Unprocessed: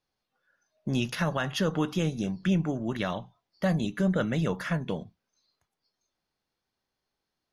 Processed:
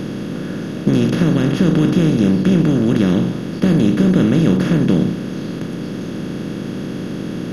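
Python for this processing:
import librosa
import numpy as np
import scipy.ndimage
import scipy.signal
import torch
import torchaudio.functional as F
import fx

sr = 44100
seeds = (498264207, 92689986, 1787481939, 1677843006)

y = fx.bin_compress(x, sr, power=0.2)
y = fx.low_shelf_res(y, sr, hz=470.0, db=10.0, q=1.5)
y = y * 10.0 ** (-3.0 / 20.0)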